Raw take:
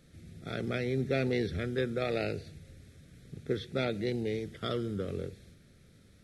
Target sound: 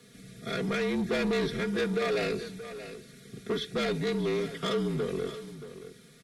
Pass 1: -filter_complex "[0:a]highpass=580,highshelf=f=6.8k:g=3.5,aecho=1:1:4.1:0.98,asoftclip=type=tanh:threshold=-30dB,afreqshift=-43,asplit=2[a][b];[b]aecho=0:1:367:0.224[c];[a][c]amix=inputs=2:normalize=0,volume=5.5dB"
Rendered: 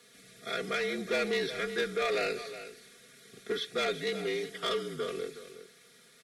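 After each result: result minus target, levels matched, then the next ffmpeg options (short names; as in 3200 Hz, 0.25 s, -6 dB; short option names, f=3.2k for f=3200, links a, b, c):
echo 0.26 s early; 250 Hz band -7.5 dB
-filter_complex "[0:a]highpass=580,highshelf=f=6.8k:g=3.5,aecho=1:1:4.1:0.98,asoftclip=type=tanh:threshold=-30dB,afreqshift=-43,asplit=2[a][b];[b]aecho=0:1:627:0.224[c];[a][c]amix=inputs=2:normalize=0,volume=5.5dB"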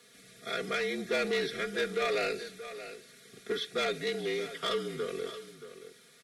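250 Hz band -7.0 dB
-filter_complex "[0:a]highpass=220,highshelf=f=6.8k:g=3.5,aecho=1:1:4.1:0.98,asoftclip=type=tanh:threshold=-30dB,afreqshift=-43,asplit=2[a][b];[b]aecho=0:1:627:0.224[c];[a][c]amix=inputs=2:normalize=0,volume=5.5dB"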